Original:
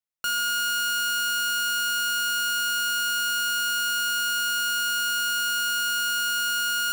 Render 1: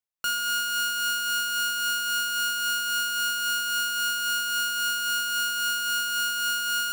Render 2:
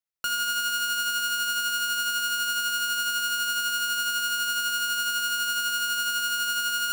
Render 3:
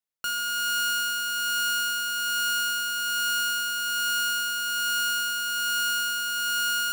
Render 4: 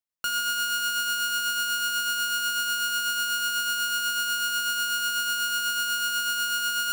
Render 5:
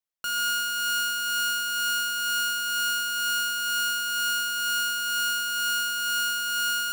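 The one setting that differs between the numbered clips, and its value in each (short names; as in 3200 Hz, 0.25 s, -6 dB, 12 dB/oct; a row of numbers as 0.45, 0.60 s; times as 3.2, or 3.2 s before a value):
tremolo, rate: 3.7, 12, 1.2, 8.1, 2.1 Hz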